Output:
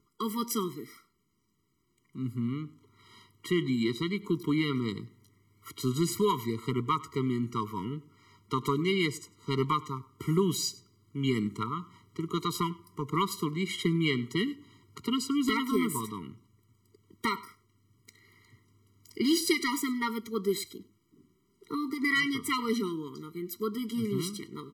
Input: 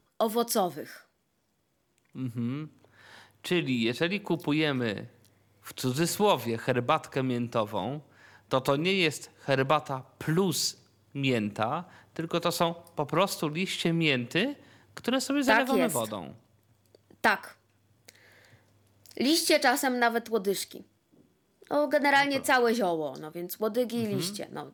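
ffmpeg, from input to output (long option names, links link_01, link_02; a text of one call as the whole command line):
ffmpeg -i in.wav -af "aecho=1:1:99:0.0841,afftfilt=real='re*eq(mod(floor(b*sr/1024/470),2),0)':imag='im*eq(mod(floor(b*sr/1024/470),2),0)':win_size=1024:overlap=0.75" out.wav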